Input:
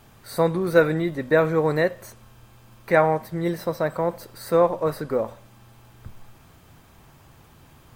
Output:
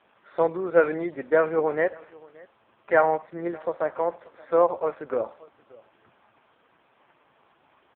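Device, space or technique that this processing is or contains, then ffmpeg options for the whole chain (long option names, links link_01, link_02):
satellite phone: -filter_complex "[0:a]asettb=1/sr,asplit=3[link_01][link_02][link_03];[link_01]atrim=end=4.834[link_04];[link_02]atrim=start=4.83:end=5.28,asetpts=PTS-STARTPTS,afade=type=in:duration=0.004:curve=qsin,afade=type=out:start_time=0.446:duration=0.004:curve=qsin,highpass=frequency=56:poles=1[link_05];[link_03]atrim=start=5.276[link_06];[link_04][link_05]acrossfade=duration=0.004:curve1=hsin:curve2=qsin[link_07];[link_07][link_06]acrossfade=duration=0.004:curve1=qsin:curve2=hsin,highpass=380,lowpass=3200,aecho=1:1:577:0.0668" -ar 8000 -c:a libopencore_amrnb -b:a 4750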